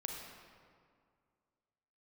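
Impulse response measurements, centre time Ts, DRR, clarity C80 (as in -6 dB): 79 ms, 0.5 dB, 3.0 dB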